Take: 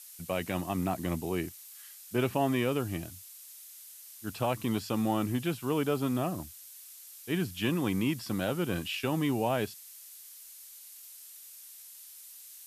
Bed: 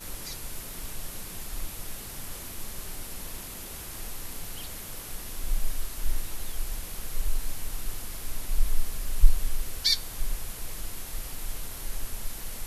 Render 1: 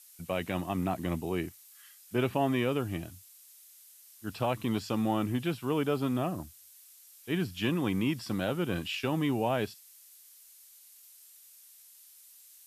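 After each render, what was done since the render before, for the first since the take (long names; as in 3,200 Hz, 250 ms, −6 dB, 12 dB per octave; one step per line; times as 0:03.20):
noise reduction from a noise print 6 dB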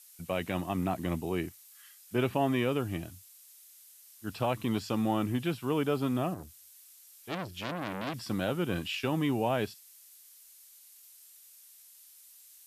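0:06.34–0:08.14: saturating transformer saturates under 2,300 Hz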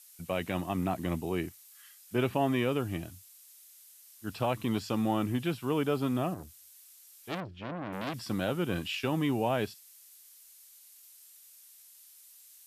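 0:07.40–0:07.93: head-to-tape spacing loss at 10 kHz 32 dB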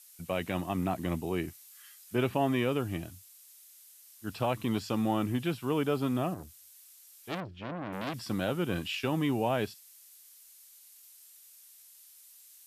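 0:01.47–0:02.15: double-tracking delay 13 ms −4 dB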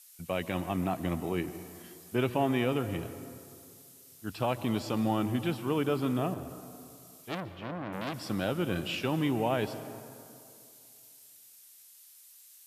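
dense smooth reverb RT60 2.5 s, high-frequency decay 0.5×, pre-delay 115 ms, DRR 12 dB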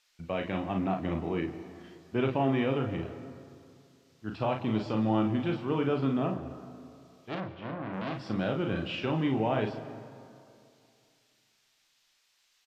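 high-frequency loss of the air 190 metres
on a send: ambience of single reflections 37 ms −5.5 dB, 52 ms −9.5 dB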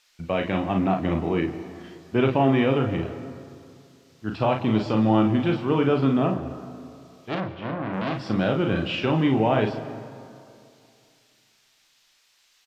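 level +7.5 dB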